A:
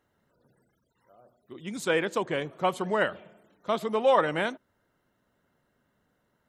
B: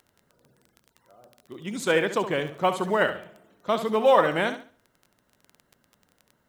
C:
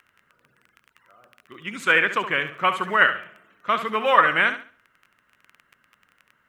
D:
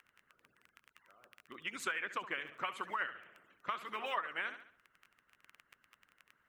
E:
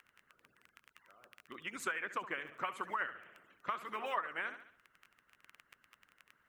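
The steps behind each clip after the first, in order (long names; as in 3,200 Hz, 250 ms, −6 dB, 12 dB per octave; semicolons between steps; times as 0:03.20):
log-companded quantiser 8 bits; flutter between parallel walls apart 11.8 metres, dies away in 0.39 s; surface crackle 16 per second −39 dBFS; level +3 dB
flat-topped bell 1,800 Hz +14.5 dB; level −4.5 dB
harmonic and percussive parts rebalanced harmonic −16 dB; downward compressor 5 to 1, threshold −32 dBFS, peak gain reduction 18.5 dB; level −4 dB
dynamic equaliser 3,500 Hz, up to −7 dB, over −55 dBFS, Q 1; level +1.5 dB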